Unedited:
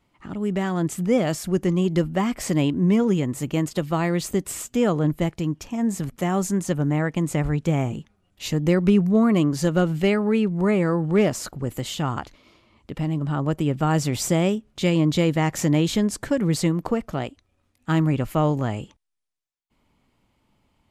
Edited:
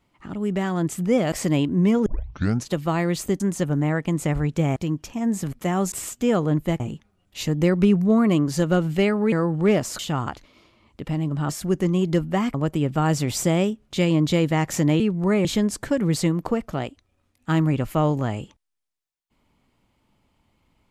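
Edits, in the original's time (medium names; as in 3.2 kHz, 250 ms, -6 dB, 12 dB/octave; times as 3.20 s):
1.32–2.37 s: move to 13.39 s
3.11 s: tape start 0.66 s
4.45–5.33 s: swap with 6.49–7.85 s
10.37–10.82 s: move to 15.85 s
11.49–11.89 s: delete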